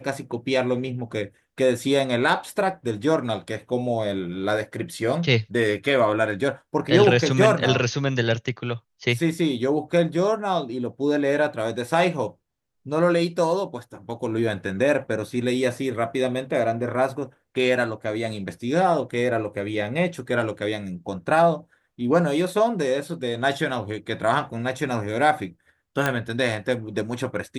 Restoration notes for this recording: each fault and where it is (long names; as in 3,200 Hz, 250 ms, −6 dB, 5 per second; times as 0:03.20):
0:26.06: click −8 dBFS